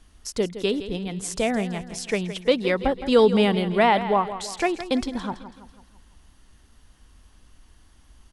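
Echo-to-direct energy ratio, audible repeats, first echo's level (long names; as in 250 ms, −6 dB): −11.5 dB, 4, −12.5 dB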